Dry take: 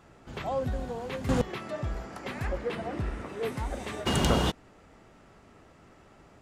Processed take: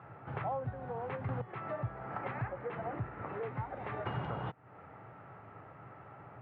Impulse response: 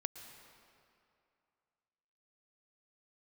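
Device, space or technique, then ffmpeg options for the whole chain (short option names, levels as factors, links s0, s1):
bass amplifier: -af "acompressor=threshold=0.0112:ratio=6,highpass=f=89:w=0.5412,highpass=f=89:w=1.3066,equalizer=f=120:t=q:w=4:g=10,equalizer=f=230:t=q:w=4:g=-9,equalizer=f=350:t=q:w=4:g=-4,equalizer=f=830:t=q:w=4:g=6,equalizer=f=1300:t=q:w=4:g=5,lowpass=f=2200:w=0.5412,lowpass=f=2200:w=1.3066,volume=1.33"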